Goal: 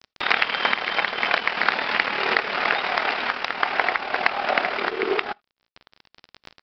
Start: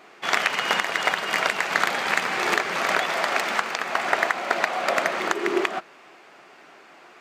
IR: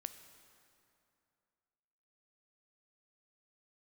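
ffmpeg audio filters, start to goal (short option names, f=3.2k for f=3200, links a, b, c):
-filter_complex "[0:a]bandreject=f=60:t=h:w=6,bandreject=f=120:t=h:w=6,bandreject=f=180:t=h:w=6,asetrate=48000,aresample=44100,aresample=11025,aeval=exprs='sgn(val(0))*max(abs(val(0))-0.00944,0)':c=same,aresample=44100,acompressor=mode=upward:threshold=-26dB:ratio=2.5,asplit=2[a][b];[1:a]atrim=start_sample=2205,atrim=end_sample=3969[c];[b][c]afir=irnorm=-1:irlink=0,volume=-10.5dB[d];[a][d]amix=inputs=2:normalize=0,tremolo=f=38:d=0.519,volume=2.5dB"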